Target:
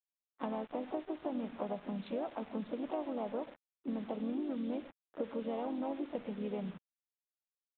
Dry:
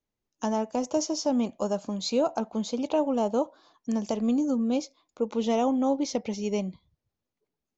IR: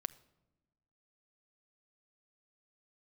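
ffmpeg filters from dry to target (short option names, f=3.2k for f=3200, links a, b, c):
-filter_complex "[0:a]adynamicsmooth=sensitivity=3:basefreq=1.1k,highshelf=f=2.2k:g=-3[a];[1:a]atrim=start_sample=2205,atrim=end_sample=6615[b];[a][b]afir=irnorm=-1:irlink=0,acompressor=threshold=-38dB:ratio=5,highpass=f=130:w=0.5412,highpass=f=130:w=1.3066,acrusher=bits=8:mix=0:aa=0.000001,asplit=4[c][d][e][f];[d]asetrate=37084,aresample=44100,atempo=1.18921,volume=-17dB[g];[e]asetrate=52444,aresample=44100,atempo=0.840896,volume=-8dB[h];[f]asetrate=58866,aresample=44100,atempo=0.749154,volume=-16dB[i];[c][g][h][i]amix=inputs=4:normalize=0,aresample=8000,aresample=44100,volume=1dB"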